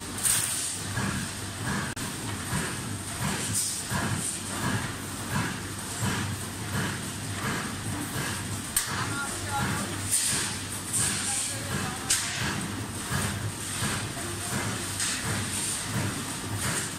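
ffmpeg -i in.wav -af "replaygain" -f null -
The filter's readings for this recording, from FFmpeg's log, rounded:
track_gain = +12.8 dB
track_peak = 0.276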